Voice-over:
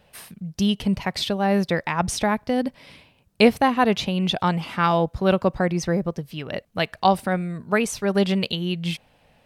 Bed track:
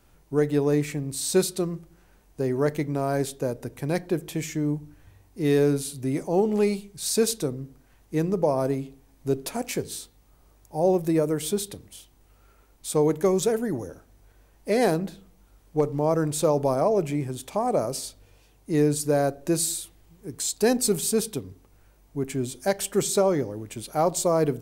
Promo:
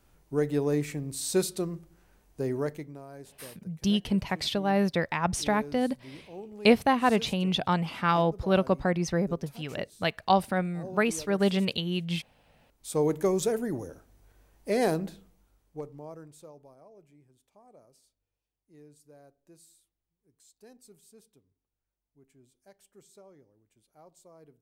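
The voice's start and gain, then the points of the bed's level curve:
3.25 s, −4.5 dB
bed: 0:02.55 −4.5 dB
0:03.07 −20.5 dB
0:12.33 −20.5 dB
0:13.01 −4 dB
0:15.16 −4 dB
0:16.76 −32.5 dB

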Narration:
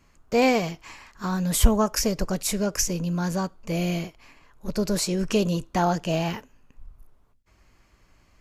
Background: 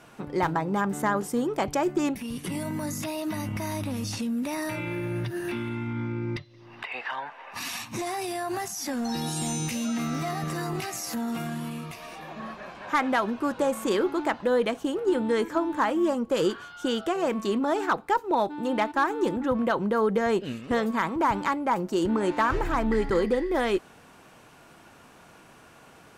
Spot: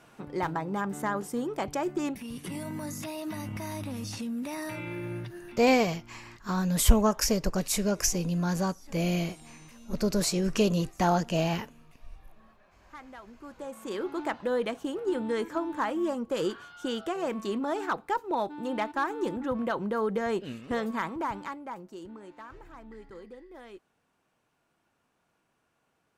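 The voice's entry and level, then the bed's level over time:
5.25 s, −2.0 dB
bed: 0:05.13 −5 dB
0:05.80 −22.5 dB
0:13.22 −22.5 dB
0:14.21 −5 dB
0:21.01 −5 dB
0:22.32 −22.5 dB

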